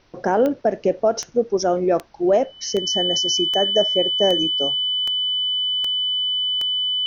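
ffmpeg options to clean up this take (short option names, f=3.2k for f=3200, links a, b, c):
-af "adeclick=t=4,bandreject=f=3k:w=30,agate=range=-21dB:threshold=-34dB"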